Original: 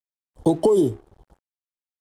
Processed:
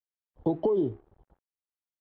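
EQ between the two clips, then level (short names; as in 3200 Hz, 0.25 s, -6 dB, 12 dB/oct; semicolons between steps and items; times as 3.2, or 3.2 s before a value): Gaussian blur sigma 2.9 samples; -8.0 dB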